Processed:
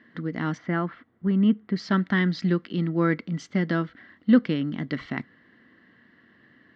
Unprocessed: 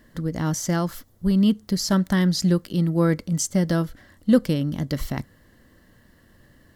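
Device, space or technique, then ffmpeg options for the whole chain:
kitchen radio: -filter_complex "[0:a]highpass=210,equalizer=frequency=240:width_type=q:width=4:gain=3,equalizer=frequency=560:width_type=q:width=4:gain=-9,equalizer=frequency=880:width_type=q:width=4:gain=-4,equalizer=frequency=1400:width_type=q:width=4:gain=3,equalizer=frequency=2000:width_type=q:width=4:gain=6,lowpass=frequency=3500:width=0.5412,lowpass=frequency=3500:width=1.3066,asplit=3[link_01][link_02][link_03];[link_01]afade=type=out:start_time=0.57:duration=0.02[link_04];[link_02]lowpass=2100,afade=type=in:start_time=0.57:duration=0.02,afade=type=out:start_time=1.74:duration=0.02[link_05];[link_03]afade=type=in:start_time=1.74:duration=0.02[link_06];[link_04][link_05][link_06]amix=inputs=3:normalize=0"

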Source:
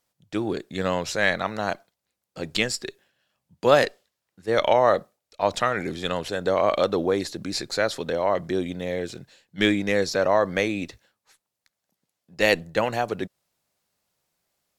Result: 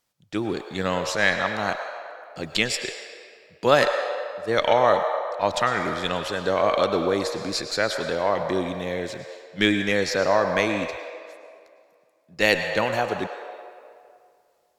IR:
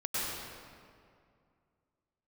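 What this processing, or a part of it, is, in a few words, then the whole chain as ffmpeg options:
filtered reverb send: -filter_complex "[0:a]asplit=2[link_01][link_02];[link_02]highpass=frequency=510:width=0.5412,highpass=frequency=510:width=1.3066,lowpass=8100[link_03];[1:a]atrim=start_sample=2205[link_04];[link_03][link_04]afir=irnorm=-1:irlink=0,volume=-10.5dB[link_05];[link_01][link_05]amix=inputs=2:normalize=0"

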